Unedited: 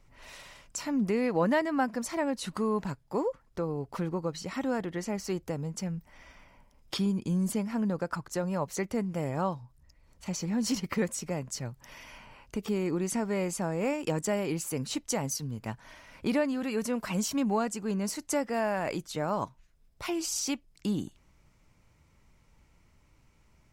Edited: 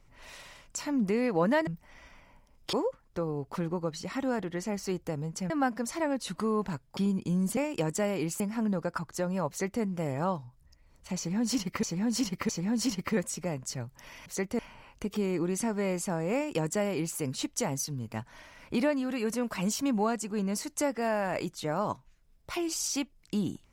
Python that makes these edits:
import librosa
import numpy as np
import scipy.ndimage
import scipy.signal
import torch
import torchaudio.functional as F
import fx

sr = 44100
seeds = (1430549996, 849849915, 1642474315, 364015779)

y = fx.edit(x, sr, fx.swap(start_s=1.67, length_s=1.47, other_s=5.91, other_length_s=1.06),
    fx.duplicate(start_s=8.66, length_s=0.33, to_s=12.11),
    fx.repeat(start_s=10.34, length_s=0.66, count=3),
    fx.duplicate(start_s=13.86, length_s=0.83, to_s=7.57), tone=tone)